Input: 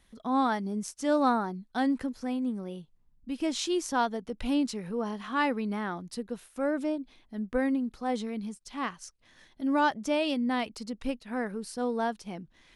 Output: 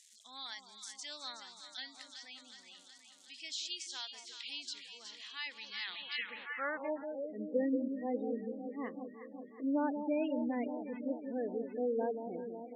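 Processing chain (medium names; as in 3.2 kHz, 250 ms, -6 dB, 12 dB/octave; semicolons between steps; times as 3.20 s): de-esser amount 95%; high-order bell 3 kHz +13 dB; echo whose repeats swap between lows and highs 185 ms, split 990 Hz, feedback 81%, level -7 dB; crackle 570 per s -41 dBFS; band-pass sweep 7.2 kHz -> 400 Hz, 5.52–7.44 s; spectral gate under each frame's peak -20 dB strong; trim +1 dB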